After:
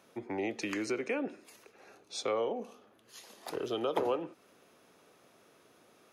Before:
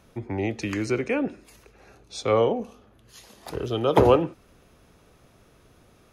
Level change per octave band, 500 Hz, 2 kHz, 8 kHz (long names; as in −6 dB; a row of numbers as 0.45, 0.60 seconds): −11.0, −6.5, −3.5 decibels